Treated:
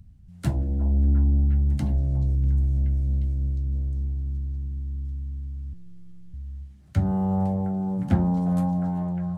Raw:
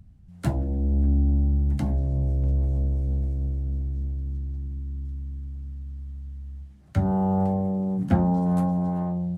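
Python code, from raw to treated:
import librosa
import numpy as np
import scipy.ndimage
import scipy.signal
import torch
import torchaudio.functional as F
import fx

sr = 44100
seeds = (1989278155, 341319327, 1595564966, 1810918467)

p1 = fx.peak_eq(x, sr, hz=660.0, db=-7.0, octaves=3.0)
p2 = p1 + fx.echo_stepped(p1, sr, ms=356, hz=720.0, octaves=0.7, feedback_pct=70, wet_db=-6.5, dry=0)
p3 = fx.spec_box(p2, sr, start_s=2.35, length_s=1.39, low_hz=360.0, high_hz=1400.0, gain_db=-7)
p4 = fx.robotise(p3, sr, hz=178.0, at=(5.73, 6.34))
p5 = fx.doppler_dist(p4, sr, depth_ms=0.16)
y = p5 * 10.0 ** (2.0 / 20.0)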